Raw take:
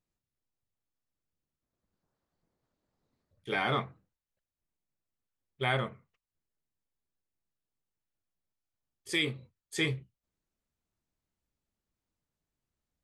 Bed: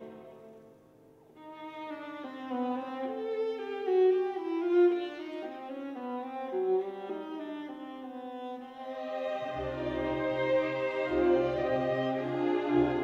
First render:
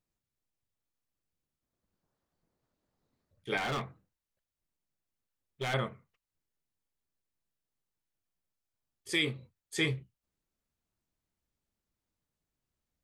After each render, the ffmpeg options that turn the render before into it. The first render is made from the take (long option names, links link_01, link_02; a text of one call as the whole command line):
ffmpeg -i in.wav -filter_complex "[0:a]asettb=1/sr,asplit=3[link_01][link_02][link_03];[link_01]atrim=end=3.574[link_04];[link_02]atrim=start=3.57:end=5.74,asetpts=PTS-STARTPTS,afade=type=in:duration=0.004:curve=qsin,afade=type=out:start_time=2.166:duration=0.004:curve=qsin,asoftclip=type=hard:threshold=-30.5dB[link_05];[link_03]atrim=start=5.736[link_06];[link_04][link_05]acrossfade=duration=0.004:curve1=hsin:curve2=qsin[link_07];[link_07][link_06]acrossfade=duration=0.004:curve1=qsin:curve2=hsin" out.wav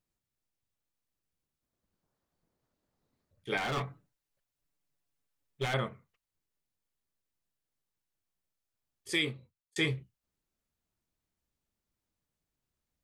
ffmpeg -i in.wav -filter_complex "[0:a]asettb=1/sr,asplit=3[link_01][link_02][link_03];[link_01]atrim=end=3.764[link_04];[link_02]atrim=start=3.76:end=5.66,asetpts=PTS-STARTPTS,afade=type=in:duration=0.004:curve=qsin,afade=type=out:start_time=1.896:duration=0.004:curve=qsin,aecho=1:1:7:0.8,atrim=end_sample=83790[link_05];[link_03]atrim=start=5.656[link_06];[link_04][link_05]acrossfade=duration=0.004:curve1=hsin:curve2=qsin[link_07];[link_07][link_06]acrossfade=duration=0.004:curve1=qsin:curve2=hsin,asplit=2[link_08][link_09];[link_08]atrim=end=9.76,asetpts=PTS-STARTPTS,afade=type=out:start_time=9.16:duration=0.6[link_10];[link_09]atrim=start=9.76,asetpts=PTS-STARTPTS,afade=type=in:duration=0.004:curve=hsin[link_11];[link_10][link_11]concat=n=2:v=0:a=1" out.wav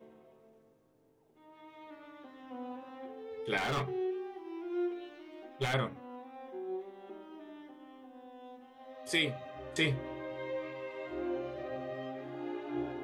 ffmpeg -i in.wav -i bed.wav -filter_complex "[1:a]volume=-10.5dB[link_01];[0:a][link_01]amix=inputs=2:normalize=0" out.wav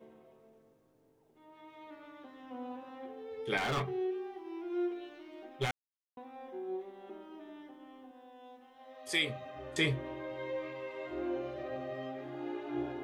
ffmpeg -i in.wav -filter_complex "[0:a]asettb=1/sr,asplit=3[link_01][link_02][link_03];[link_01]atrim=end=8.114[link_04];[link_02]atrim=start=8.11:end=9.3,asetpts=PTS-STARTPTS,afade=type=in:duration=0.004:curve=qsin,afade=type=out:start_time=1.186:duration=0.004:curve=qsin,lowshelf=frequency=450:gain=-7[link_05];[link_03]atrim=start=9.296[link_06];[link_04][link_05]acrossfade=duration=0.004:curve1=hsin:curve2=qsin[link_07];[link_07][link_06]acrossfade=duration=0.004:curve1=qsin:curve2=hsin,asplit=3[link_08][link_09][link_10];[link_08]atrim=end=5.71,asetpts=PTS-STARTPTS,afade=type=out:start_time=5.706:duration=0.004:curve=hsin[link_11];[link_09]atrim=start=5.71:end=6.17,asetpts=PTS-STARTPTS,volume=0[link_12];[link_10]atrim=start=6.17,asetpts=PTS-STARTPTS,afade=type=in:duration=0.004:curve=hsin[link_13];[link_11][link_12][link_13]concat=n=3:v=0:a=1" out.wav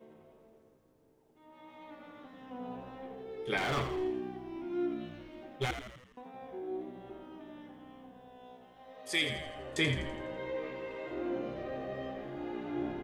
ffmpeg -i in.wav -filter_complex "[0:a]asplit=8[link_01][link_02][link_03][link_04][link_05][link_06][link_07][link_08];[link_02]adelay=83,afreqshift=-63,volume=-8.5dB[link_09];[link_03]adelay=166,afreqshift=-126,volume=-13.7dB[link_10];[link_04]adelay=249,afreqshift=-189,volume=-18.9dB[link_11];[link_05]adelay=332,afreqshift=-252,volume=-24.1dB[link_12];[link_06]adelay=415,afreqshift=-315,volume=-29.3dB[link_13];[link_07]adelay=498,afreqshift=-378,volume=-34.5dB[link_14];[link_08]adelay=581,afreqshift=-441,volume=-39.7dB[link_15];[link_01][link_09][link_10][link_11][link_12][link_13][link_14][link_15]amix=inputs=8:normalize=0" out.wav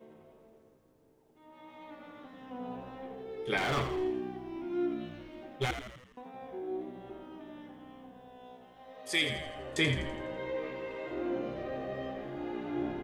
ffmpeg -i in.wav -af "volume=1.5dB" out.wav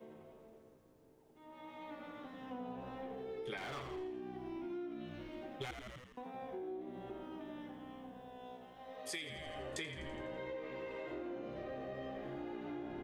ffmpeg -i in.wav -filter_complex "[0:a]acrossover=split=370|1200|3200[link_01][link_02][link_03][link_04];[link_01]alimiter=level_in=9.5dB:limit=-24dB:level=0:latency=1,volume=-9.5dB[link_05];[link_05][link_02][link_03][link_04]amix=inputs=4:normalize=0,acompressor=threshold=-41dB:ratio=8" out.wav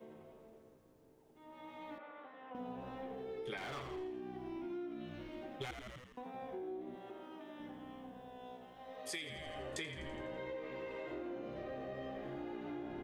ffmpeg -i in.wav -filter_complex "[0:a]asettb=1/sr,asplit=3[link_01][link_02][link_03];[link_01]atrim=end=1.984[link_04];[link_02]atrim=start=1.98:end=2.55,asetpts=PTS-STARTPTS,afade=type=in:duration=0.004:curve=qsin,afade=type=out:start_time=0.566:duration=0.004:curve=qsin,acrossover=split=380 2900:gain=0.0891 1 0.0708[link_05][link_06][link_07];[link_05][link_06][link_07]amix=inputs=3:normalize=0[link_08];[link_03]atrim=start=2.546[link_09];[link_04][link_08]acrossfade=duration=0.004:curve1=hsin:curve2=qsin[link_10];[link_10][link_09]acrossfade=duration=0.004:curve1=qsin:curve2=hsin,asettb=1/sr,asplit=3[link_11][link_12][link_13];[link_11]atrim=end=6.954[link_14];[link_12]atrim=start=6.95:end=7.6,asetpts=PTS-STARTPTS,afade=type=in:duration=0.004:curve=qsin,afade=type=out:start_time=0.646:duration=0.004:curve=qsin,highpass=frequency=430:poles=1[link_15];[link_13]atrim=start=7.596[link_16];[link_14][link_15]acrossfade=duration=0.004:curve1=hsin:curve2=qsin[link_17];[link_17][link_16]acrossfade=duration=0.004:curve1=qsin:curve2=hsin" out.wav